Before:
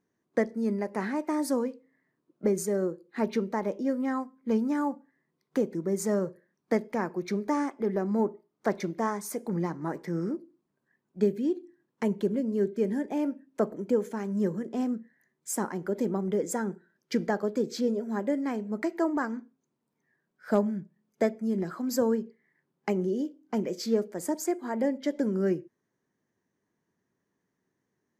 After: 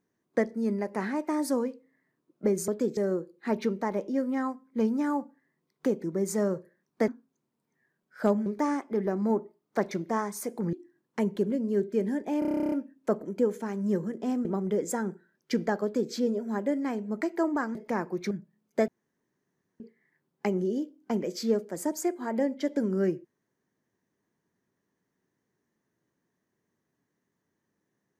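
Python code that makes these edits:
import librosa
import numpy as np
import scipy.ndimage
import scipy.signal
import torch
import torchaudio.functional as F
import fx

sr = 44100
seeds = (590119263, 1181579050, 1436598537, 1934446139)

y = fx.edit(x, sr, fx.swap(start_s=6.79, length_s=0.56, other_s=19.36, other_length_s=1.38),
    fx.cut(start_s=9.62, length_s=1.95),
    fx.stutter(start_s=13.23, slice_s=0.03, count=12),
    fx.cut(start_s=14.96, length_s=1.1),
    fx.duplicate(start_s=17.44, length_s=0.29, to_s=2.68),
    fx.room_tone_fill(start_s=21.31, length_s=0.92), tone=tone)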